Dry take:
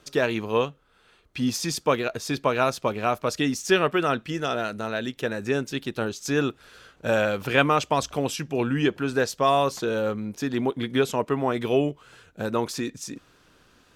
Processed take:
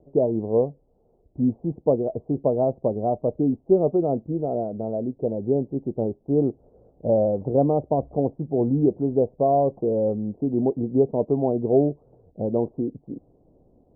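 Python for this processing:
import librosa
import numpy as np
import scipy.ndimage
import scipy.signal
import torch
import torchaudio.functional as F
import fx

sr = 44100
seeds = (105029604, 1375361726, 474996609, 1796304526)

y = scipy.signal.sosfilt(scipy.signal.butter(8, 750.0, 'lowpass', fs=sr, output='sos'), x)
y = y * librosa.db_to_amplitude(3.5)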